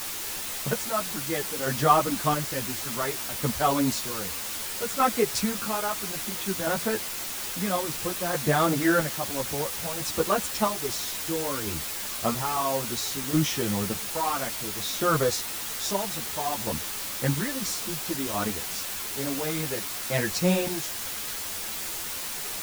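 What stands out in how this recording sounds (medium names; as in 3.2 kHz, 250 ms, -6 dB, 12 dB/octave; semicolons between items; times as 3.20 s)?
chopped level 0.6 Hz, depth 60%, duty 40%; a quantiser's noise floor 6-bit, dither triangular; a shimmering, thickened sound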